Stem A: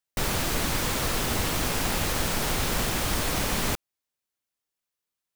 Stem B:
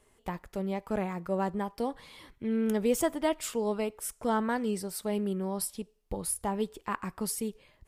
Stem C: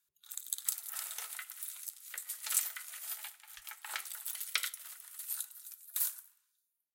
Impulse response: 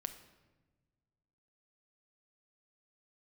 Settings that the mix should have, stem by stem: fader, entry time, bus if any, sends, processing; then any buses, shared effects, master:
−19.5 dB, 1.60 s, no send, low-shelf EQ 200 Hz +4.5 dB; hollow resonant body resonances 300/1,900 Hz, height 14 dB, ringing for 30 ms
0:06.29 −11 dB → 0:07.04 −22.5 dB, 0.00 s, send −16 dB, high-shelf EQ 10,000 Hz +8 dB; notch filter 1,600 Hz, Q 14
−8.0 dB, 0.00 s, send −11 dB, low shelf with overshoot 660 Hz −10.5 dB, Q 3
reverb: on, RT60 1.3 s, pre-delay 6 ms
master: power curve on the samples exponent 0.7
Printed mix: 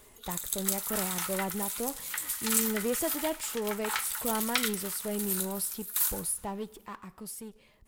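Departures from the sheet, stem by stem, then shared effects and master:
stem A: muted
stem B: send −16 dB → −22 dB
stem C −8.0 dB → −1.0 dB

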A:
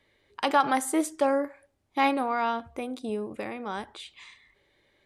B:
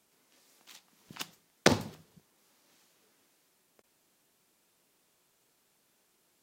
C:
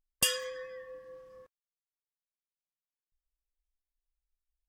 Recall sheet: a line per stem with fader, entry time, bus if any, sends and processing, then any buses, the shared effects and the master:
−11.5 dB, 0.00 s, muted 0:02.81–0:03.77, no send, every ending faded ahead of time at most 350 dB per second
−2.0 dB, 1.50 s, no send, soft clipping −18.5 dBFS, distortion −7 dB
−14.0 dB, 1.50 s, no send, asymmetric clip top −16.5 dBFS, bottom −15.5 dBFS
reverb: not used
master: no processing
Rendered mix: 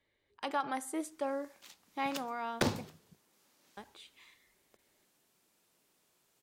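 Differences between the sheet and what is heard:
stem B: entry 1.50 s → 0.95 s
stem C: muted

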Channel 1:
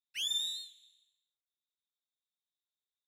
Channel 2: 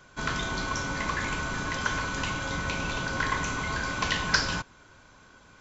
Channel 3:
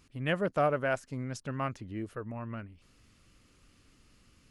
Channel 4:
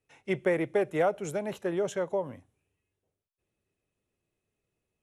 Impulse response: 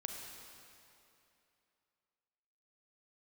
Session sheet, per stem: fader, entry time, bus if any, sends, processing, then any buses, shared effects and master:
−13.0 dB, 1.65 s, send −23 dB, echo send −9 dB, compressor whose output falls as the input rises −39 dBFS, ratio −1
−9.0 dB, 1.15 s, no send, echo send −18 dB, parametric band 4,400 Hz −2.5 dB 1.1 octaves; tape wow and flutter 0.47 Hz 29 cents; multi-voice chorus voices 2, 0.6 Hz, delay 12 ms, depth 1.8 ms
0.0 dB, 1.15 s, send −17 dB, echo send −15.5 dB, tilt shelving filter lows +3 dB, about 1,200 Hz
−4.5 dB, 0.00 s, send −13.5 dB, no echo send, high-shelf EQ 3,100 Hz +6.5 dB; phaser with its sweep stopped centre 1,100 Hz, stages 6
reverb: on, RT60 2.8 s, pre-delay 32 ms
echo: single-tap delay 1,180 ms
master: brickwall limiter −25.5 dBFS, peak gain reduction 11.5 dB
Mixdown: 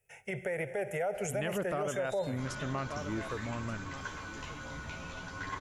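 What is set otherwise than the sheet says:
stem 2: entry 1.15 s → 2.20 s
stem 3: missing tilt shelving filter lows +3 dB, about 1,200 Hz
stem 4 −4.5 dB → +4.0 dB

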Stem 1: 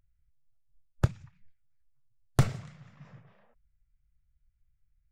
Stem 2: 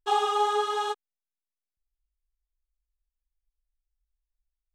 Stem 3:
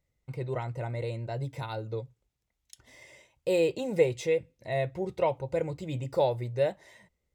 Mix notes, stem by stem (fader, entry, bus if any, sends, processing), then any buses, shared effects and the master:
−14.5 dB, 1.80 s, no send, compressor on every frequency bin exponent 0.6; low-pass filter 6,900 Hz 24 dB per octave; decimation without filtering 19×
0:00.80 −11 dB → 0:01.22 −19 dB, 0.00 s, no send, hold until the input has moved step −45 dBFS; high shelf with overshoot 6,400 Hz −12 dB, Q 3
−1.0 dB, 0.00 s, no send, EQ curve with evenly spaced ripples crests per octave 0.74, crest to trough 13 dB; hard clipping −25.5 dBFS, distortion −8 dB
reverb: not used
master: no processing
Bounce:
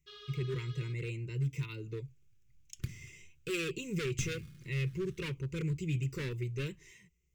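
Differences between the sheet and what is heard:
stem 2 −11.0 dB → −19.5 dB
master: extra Butterworth band-reject 750 Hz, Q 0.54

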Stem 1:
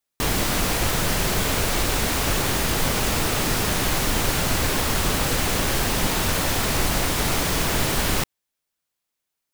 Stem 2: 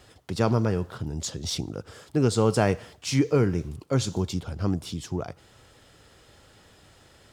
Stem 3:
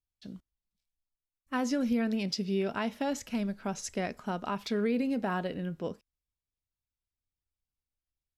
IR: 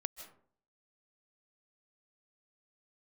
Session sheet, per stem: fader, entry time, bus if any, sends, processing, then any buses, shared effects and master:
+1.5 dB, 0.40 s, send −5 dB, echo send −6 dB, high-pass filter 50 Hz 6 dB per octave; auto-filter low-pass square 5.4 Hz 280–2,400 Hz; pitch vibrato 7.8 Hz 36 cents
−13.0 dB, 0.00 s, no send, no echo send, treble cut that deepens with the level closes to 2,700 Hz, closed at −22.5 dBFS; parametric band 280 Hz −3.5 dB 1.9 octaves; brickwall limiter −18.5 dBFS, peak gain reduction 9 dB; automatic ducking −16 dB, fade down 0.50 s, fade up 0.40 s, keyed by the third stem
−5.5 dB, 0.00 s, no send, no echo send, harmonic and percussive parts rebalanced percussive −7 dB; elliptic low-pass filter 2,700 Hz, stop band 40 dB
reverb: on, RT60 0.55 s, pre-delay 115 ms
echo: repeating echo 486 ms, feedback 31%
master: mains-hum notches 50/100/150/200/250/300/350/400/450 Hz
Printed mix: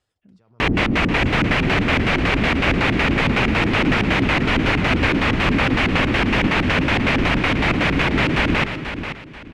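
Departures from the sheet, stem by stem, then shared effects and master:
stem 2 −13.0 dB → −20.5 dB
master: missing mains-hum notches 50/100/150/200/250/300/350/400/450 Hz

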